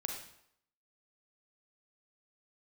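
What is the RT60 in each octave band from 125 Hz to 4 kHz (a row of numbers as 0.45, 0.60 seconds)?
0.65, 0.65, 0.70, 0.75, 0.65, 0.60 seconds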